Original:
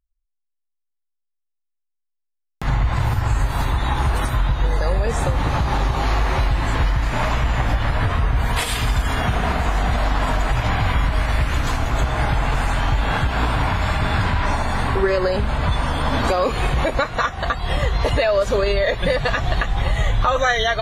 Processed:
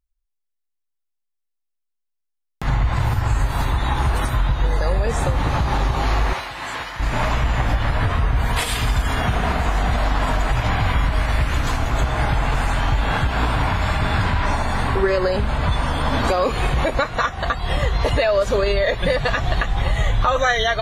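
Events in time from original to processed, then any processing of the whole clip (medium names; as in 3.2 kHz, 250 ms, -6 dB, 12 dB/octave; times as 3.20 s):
6.33–7.00 s: high-pass 1 kHz 6 dB/octave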